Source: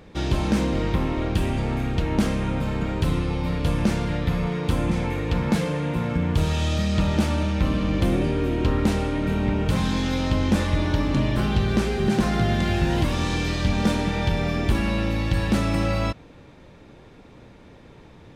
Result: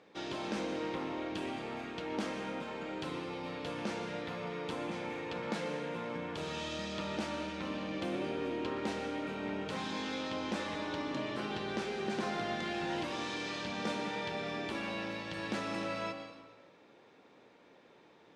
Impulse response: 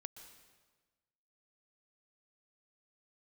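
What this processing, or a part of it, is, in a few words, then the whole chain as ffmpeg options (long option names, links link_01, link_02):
supermarket ceiling speaker: -filter_complex "[0:a]highpass=330,lowpass=6600[link_01];[1:a]atrim=start_sample=2205[link_02];[link_01][link_02]afir=irnorm=-1:irlink=0,volume=-4dB"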